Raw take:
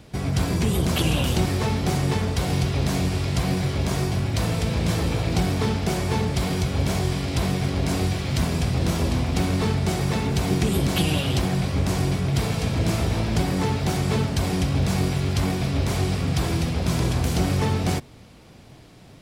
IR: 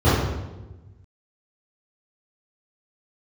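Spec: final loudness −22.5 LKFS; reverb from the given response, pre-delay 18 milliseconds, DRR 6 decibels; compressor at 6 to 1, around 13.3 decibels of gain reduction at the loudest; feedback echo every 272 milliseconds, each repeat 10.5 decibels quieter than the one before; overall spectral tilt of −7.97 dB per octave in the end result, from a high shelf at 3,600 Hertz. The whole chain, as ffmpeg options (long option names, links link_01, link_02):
-filter_complex "[0:a]highshelf=frequency=3600:gain=-3.5,acompressor=threshold=-33dB:ratio=6,aecho=1:1:272|544|816:0.299|0.0896|0.0269,asplit=2[link_01][link_02];[1:a]atrim=start_sample=2205,adelay=18[link_03];[link_02][link_03]afir=irnorm=-1:irlink=0,volume=-28.5dB[link_04];[link_01][link_04]amix=inputs=2:normalize=0,volume=5dB"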